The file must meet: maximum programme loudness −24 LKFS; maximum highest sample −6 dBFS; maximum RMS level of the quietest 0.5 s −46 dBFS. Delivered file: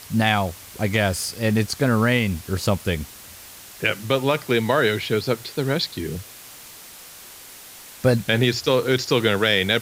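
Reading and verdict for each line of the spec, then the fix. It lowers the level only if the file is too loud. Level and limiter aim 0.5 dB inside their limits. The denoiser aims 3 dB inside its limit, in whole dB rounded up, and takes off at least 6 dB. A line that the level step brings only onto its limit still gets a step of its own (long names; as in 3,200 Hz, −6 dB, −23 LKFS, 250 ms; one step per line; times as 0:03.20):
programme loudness −21.5 LKFS: out of spec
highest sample −5.0 dBFS: out of spec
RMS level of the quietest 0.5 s −42 dBFS: out of spec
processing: broadband denoise 6 dB, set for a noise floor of −42 dBFS
level −3 dB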